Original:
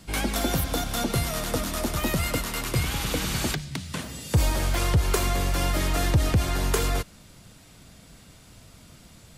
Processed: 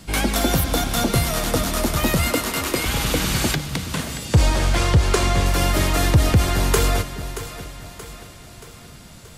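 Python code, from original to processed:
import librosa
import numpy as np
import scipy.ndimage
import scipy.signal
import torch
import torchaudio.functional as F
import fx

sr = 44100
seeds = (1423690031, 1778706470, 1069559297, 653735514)

y = fx.low_shelf_res(x, sr, hz=190.0, db=-13.0, q=1.5, at=(2.3, 2.86))
y = fx.lowpass(y, sr, hz=8100.0, slope=12, at=(4.25, 5.46))
y = fx.echo_split(y, sr, split_hz=340.0, low_ms=419, high_ms=628, feedback_pct=52, wet_db=-12.5)
y = y * 10.0 ** (6.0 / 20.0)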